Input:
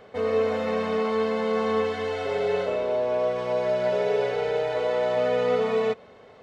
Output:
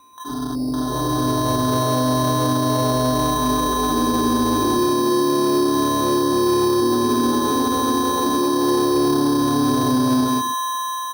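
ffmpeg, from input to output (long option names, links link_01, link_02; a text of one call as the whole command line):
ffmpeg -i in.wav -filter_complex "[0:a]aeval=exprs='val(0)+0.0398*sin(2*PI*1800*n/s)':channel_layout=same,asetrate=25442,aresample=44100,acrossover=split=230|1300[link_01][link_02][link_03];[link_03]aeval=exprs='(mod(188*val(0)+1,2)-1)/188':channel_layout=same[link_04];[link_01][link_02][link_04]amix=inputs=3:normalize=0,aecho=1:1:132|264|396:0.562|0.118|0.0248,alimiter=limit=-17dB:level=0:latency=1:release=49,dynaudnorm=framelen=300:gausssize=7:maxgain=8dB,afwtdn=0.1,acrusher=samples=9:mix=1:aa=0.000001,asoftclip=type=tanh:threshold=-9.5dB" out.wav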